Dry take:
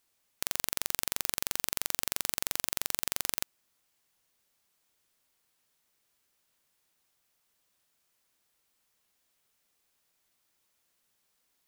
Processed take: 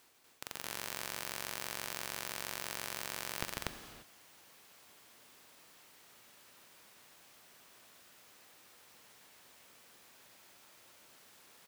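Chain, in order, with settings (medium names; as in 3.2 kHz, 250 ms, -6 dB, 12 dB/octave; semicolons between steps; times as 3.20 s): high-pass 160 Hz 6 dB/octave; treble shelf 4.1 kHz -8.5 dB; reverse; compression 12:1, threshold -53 dBFS, peak gain reduction 23 dB; reverse; loudspeakers at several distances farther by 50 m -4 dB, 83 m 0 dB; gated-style reverb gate 370 ms flat, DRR 8 dB; trim +16 dB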